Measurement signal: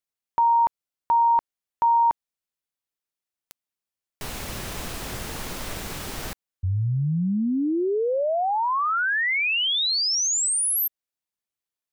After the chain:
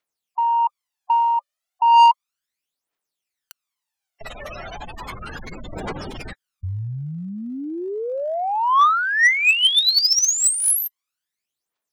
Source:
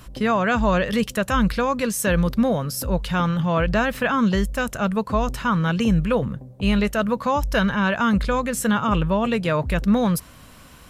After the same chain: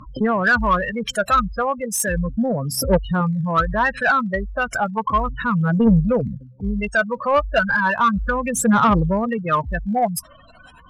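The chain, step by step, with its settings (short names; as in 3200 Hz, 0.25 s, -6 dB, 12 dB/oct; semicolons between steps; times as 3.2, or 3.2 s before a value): spectral gate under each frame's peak -15 dB strong; phaser 0.34 Hz, delay 1.7 ms, feedback 71%; overdrive pedal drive 16 dB, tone 7200 Hz, clips at -1 dBFS; gain -4.5 dB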